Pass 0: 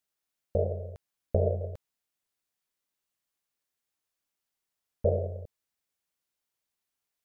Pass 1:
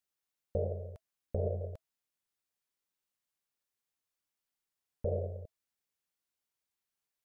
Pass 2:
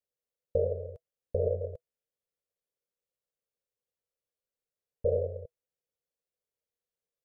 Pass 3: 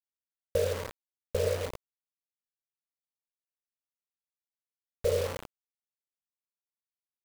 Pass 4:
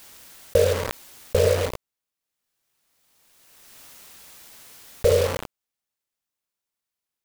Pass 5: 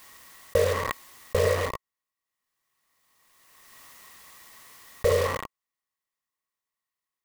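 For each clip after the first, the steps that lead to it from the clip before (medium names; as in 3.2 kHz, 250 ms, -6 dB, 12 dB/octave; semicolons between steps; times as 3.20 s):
band-stop 650 Hz, Q 19; peak limiter -19.5 dBFS, peak gain reduction 5.5 dB; trim -4 dB
FFT filter 130 Hz 0 dB, 310 Hz -7 dB, 490 Hz +11 dB, 860 Hz -9 dB
wow and flutter 22 cents; de-hum 95.89 Hz, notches 3; bit crusher 6-bit
swell ahead of each attack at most 25 dB/s; trim +9 dB
small resonant body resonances 1.1/1.9 kHz, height 14 dB, ringing for 25 ms; trim -4.5 dB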